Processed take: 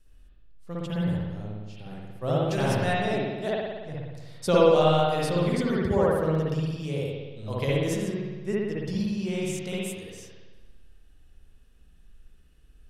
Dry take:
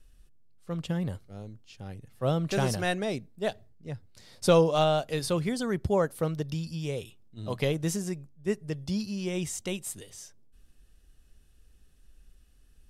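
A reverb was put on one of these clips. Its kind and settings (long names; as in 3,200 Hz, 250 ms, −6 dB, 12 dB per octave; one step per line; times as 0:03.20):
spring reverb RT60 1.3 s, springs 57 ms, chirp 35 ms, DRR −6 dB
level −3.5 dB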